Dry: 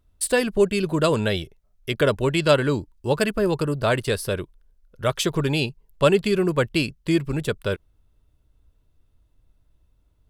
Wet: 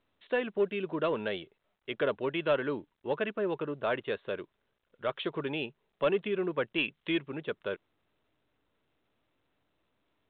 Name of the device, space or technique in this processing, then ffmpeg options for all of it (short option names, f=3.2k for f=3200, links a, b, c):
telephone: -filter_complex "[0:a]asettb=1/sr,asplit=3[a][b][c];[a]atrim=end=6.784[d];[b]atrim=start=6.78:end=7.2,asetpts=PTS-STARTPTS,afade=t=in:d=0.004:c=qsin,afade=t=out:st=0.416:d=0.004:c=qsin,equalizer=f=3.8k:t=o:w=2.2:g=10.5[e];[c]atrim=start=7.196[f];[d][e]acrossfade=d=0.004:c1=hsin:c2=qsin[g];[g][f]acrossfade=d=0.004:c1=qsin:c2=hsin,highpass=270,lowpass=3.4k,asoftclip=type=tanh:threshold=-9dB,volume=-8dB" -ar 8000 -c:a pcm_mulaw